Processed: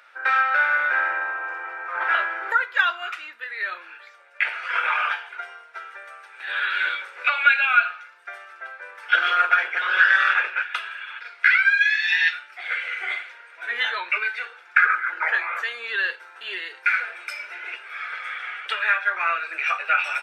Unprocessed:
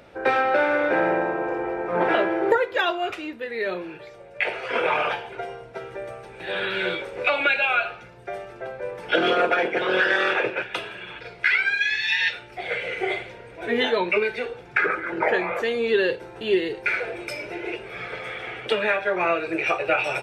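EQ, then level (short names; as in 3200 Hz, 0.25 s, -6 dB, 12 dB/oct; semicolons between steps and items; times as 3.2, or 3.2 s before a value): resonant high-pass 1400 Hz, resonance Q 3; -2.5 dB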